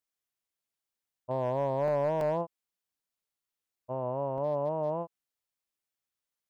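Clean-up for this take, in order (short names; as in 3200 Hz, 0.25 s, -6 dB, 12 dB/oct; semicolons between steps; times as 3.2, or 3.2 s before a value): clip repair -22 dBFS; interpolate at 1.88/2.21/3.76/4.38, 1.6 ms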